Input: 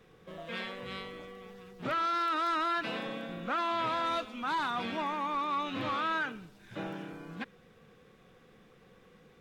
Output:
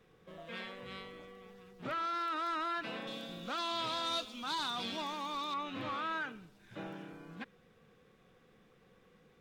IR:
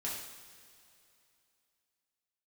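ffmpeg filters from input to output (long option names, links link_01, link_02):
-filter_complex "[0:a]asettb=1/sr,asplit=3[link_01][link_02][link_03];[link_01]atrim=end=3.074[link_04];[link_02]atrim=start=3.07:end=5.54,asetpts=PTS-STARTPTS,afade=type=in:duration=0.004:curve=qsin,afade=type=out:start_time=2.466:duration=0.004:curve=qsin,highshelf=frequency=2900:width_type=q:width=1.5:gain=10.5[link_05];[link_03]atrim=start=5.536[link_06];[link_04][link_05]acrossfade=duration=0.004:curve1=hsin:curve2=qsin[link_07];[link_07][link_06]acrossfade=duration=0.004:curve1=qsin:curve2=hsin,volume=-5.5dB"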